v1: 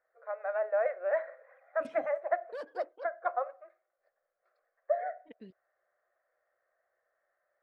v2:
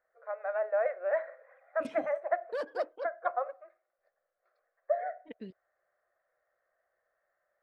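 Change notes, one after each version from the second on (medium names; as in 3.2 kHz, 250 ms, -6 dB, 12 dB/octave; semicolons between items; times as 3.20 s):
second voice +6.0 dB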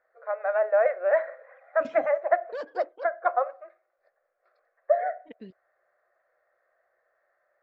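first voice +7.5 dB; master: add brick-wall FIR low-pass 7.7 kHz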